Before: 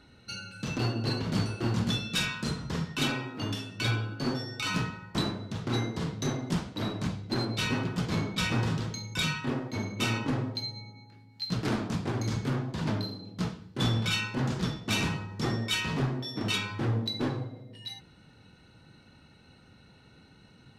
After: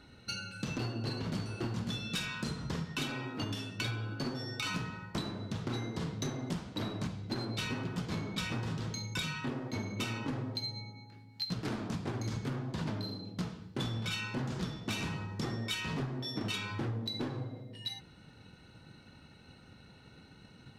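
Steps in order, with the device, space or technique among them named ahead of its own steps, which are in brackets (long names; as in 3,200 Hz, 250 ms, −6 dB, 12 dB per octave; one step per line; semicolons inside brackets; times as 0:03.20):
drum-bus smash (transient designer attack +4 dB, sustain 0 dB; downward compressor, threshold −32 dBFS, peak gain reduction 11 dB; soft clipping −24.5 dBFS, distortion −23 dB)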